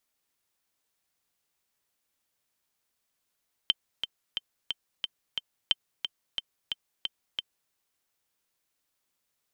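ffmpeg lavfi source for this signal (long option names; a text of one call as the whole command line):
ffmpeg -f lavfi -i "aevalsrc='pow(10,(-9-8*gte(mod(t,6*60/179),60/179))/20)*sin(2*PI*3110*mod(t,60/179))*exp(-6.91*mod(t,60/179)/0.03)':duration=4.02:sample_rate=44100" out.wav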